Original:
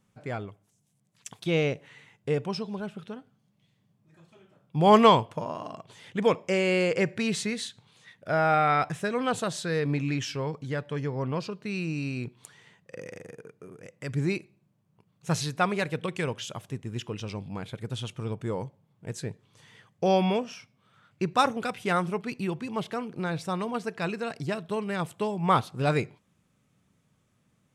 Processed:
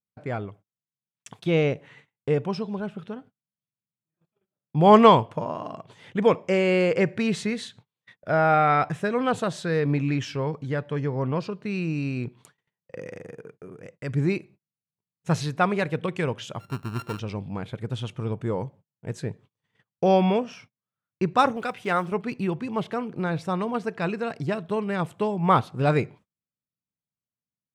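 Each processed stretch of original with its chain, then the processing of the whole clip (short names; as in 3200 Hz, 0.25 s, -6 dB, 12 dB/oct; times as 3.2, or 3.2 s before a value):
16.6–17.19 sample sorter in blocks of 32 samples + notch 6600 Hz, Q 13
21.56–22.12 block floating point 7-bit + low shelf 300 Hz -8 dB
whole clip: gate -51 dBFS, range -34 dB; high shelf 3500 Hz -10.5 dB; gain +4 dB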